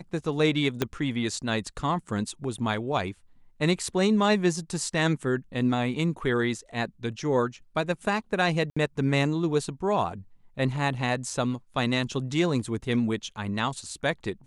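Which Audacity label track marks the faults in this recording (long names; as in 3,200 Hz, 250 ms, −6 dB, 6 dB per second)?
0.820000	0.820000	click −10 dBFS
8.700000	8.770000	drop-out 65 ms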